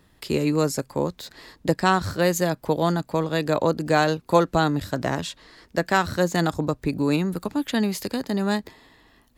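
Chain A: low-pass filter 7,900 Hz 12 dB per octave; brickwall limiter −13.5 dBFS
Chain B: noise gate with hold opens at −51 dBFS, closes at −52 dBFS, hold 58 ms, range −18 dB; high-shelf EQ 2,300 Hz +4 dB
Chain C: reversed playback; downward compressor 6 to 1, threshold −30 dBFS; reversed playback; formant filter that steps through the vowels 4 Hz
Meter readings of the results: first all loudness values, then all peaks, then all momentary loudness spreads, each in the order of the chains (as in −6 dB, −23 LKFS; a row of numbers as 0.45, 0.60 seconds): −26.0, −23.5, −45.0 LKFS; −13.5, −4.0, −27.0 dBFS; 7, 8, 12 LU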